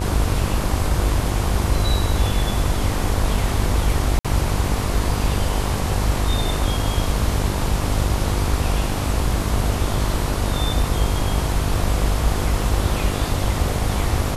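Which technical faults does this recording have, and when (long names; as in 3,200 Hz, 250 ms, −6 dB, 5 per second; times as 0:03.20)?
mains buzz 50 Hz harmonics 24 −25 dBFS
0:04.19–0:04.25: drop-out 56 ms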